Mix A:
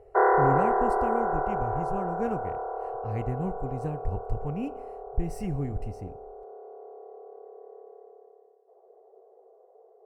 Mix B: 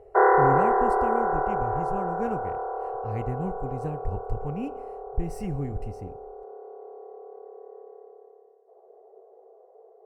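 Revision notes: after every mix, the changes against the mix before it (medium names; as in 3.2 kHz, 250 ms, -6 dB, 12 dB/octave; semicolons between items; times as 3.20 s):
background: send +7.0 dB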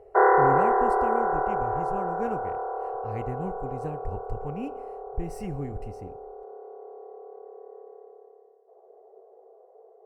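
master: add tone controls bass -4 dB, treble -1 dB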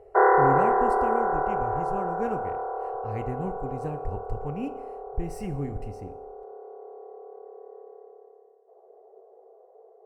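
speech: send +8.0 dB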